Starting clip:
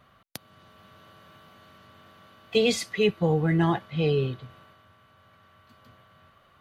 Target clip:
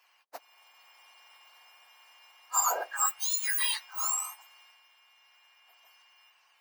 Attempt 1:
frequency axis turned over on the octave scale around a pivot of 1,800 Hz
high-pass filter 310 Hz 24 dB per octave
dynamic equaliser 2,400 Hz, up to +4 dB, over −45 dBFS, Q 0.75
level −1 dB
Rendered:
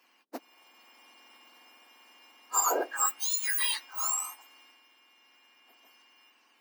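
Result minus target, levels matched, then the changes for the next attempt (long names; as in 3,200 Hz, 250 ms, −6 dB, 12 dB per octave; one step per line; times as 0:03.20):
250 Hz band +19.5 dB
change: high-pass filter 630 Hz 24 dB per octave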